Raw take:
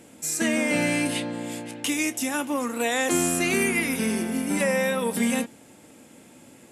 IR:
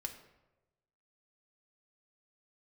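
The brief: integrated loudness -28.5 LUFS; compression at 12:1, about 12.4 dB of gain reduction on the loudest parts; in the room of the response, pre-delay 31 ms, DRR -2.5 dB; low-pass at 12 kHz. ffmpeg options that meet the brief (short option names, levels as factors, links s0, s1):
-filter_complex "[0:a]lowpass=12000,acompressor=threshold=0.0251:ratio=12,asplit=2[s0][s1];[1:a]atrim=start_sample=2205,adelay=31[s2];[s1][s2]afir=irnorm=-1:irlink=0,volume=1.58[s3];[s0][s3]amix=inputs=2:normalize=0,volume=1.26"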